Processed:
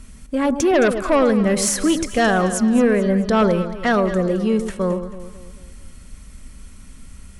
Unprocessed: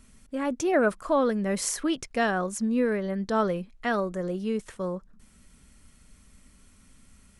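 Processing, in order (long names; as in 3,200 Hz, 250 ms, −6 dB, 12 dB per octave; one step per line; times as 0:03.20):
harmonic generator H 5 −13 dB, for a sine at −11 dBFS
low-shelf EQ 81 Hz +9.5 dB
delay that swaps between a low-pass and a high-pass 109 ms, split 1,000 Hz, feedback 65%, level −8.5 dB
level +3.5 dB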